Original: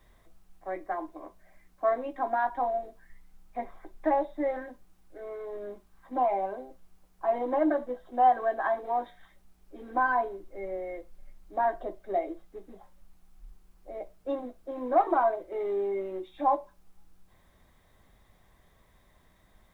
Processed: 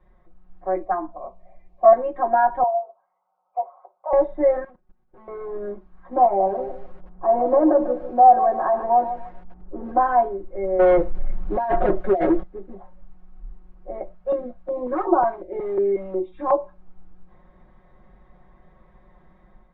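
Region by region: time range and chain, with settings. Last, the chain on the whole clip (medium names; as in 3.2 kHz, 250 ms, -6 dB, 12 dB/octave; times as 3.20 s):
0.82–1.93 s: small resonant body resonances 250/660/1200/2400 Hz, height 10 dB, ringing for 50 ms + touch-sensitive phaser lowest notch 230 Hz, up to 2.9 kHz, full sweep at -16 dBFS
2.63–4.13 s: Butterworth band-pass 820 Hz, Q 0.99 + tilt EQ +3 dB/octave + static phaser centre 740 Hz, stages 4
4.64–5.28 s: comb filter that takes the minimum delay 8 ms + level held to a coarse grid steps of 19 dB
6.25–9.92 s: companding laws mixed up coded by mu + low-pass 1.1 kHz + bit-crushed delay 147 ms, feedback 35%, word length 8-bit, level -10 dB
10.79–12.43 s: compressor with a negative ratio -33 dBFS, ratio -0.5 + waveshaping leveller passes 3
14.14–16.60 s: block-companded coder 7-bit + step-sequenced notch 5.5 Hz 310–2000 Hz
whole clip: low-pass 1.3 kHz 12 dB/octave; comb 5.5 ms, depth 98%; level rider gain up to 7 dB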